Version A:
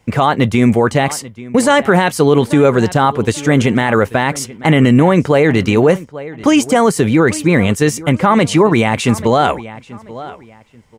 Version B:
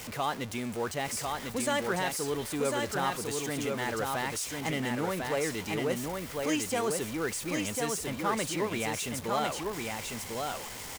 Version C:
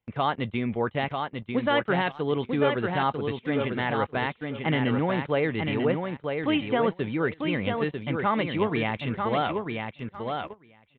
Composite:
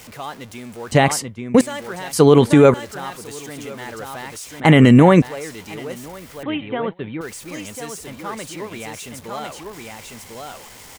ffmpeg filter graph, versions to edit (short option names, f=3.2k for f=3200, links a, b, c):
-filter_complex "[0:a]asplit=3[a][b][c];[1:a]asplit=5[d][e][f][g][h];[d]atrim=end=0.922[i];[a]atrim=start=0.918:end=1.612[j];[e]atrim=start=1.608:end=2.132[k];[b]atrim=start=2.128:end=2.742[l];[f]atrim=start=2.738:end=4.602[m];[c]atrim=start=4.598:end=5.222[n];[g]atrim=start=5.218:end=6.432[o];[2:a]atrim=start=6.428:end=7.212[p];[h]atrim=start=7.208[q];[i][j]acrossfade=d=0.004:c1=hsin:c2=hsin[r];[r][k]acrossfade=d=0.004:c1=hsin:c2=hsin[s];[s][l]acrossfade=d=0.004:c1=hsin:c2=hsin[t];[t][m]acrossfade=d=0.004:c1=hsin:c2=hsin[u];[u][n]acrossfade=d=0.004:c1=hsin:c2=hsin[v];[v][o]acrossfade=d=0.004:c1=hsin:c2=hsin[w];[w][p]acrossfade=d=0.004:c1=hsin:c2=hsin[x];[x][q]acrossfade=d=0.004:c1=hsin:c2=hsin"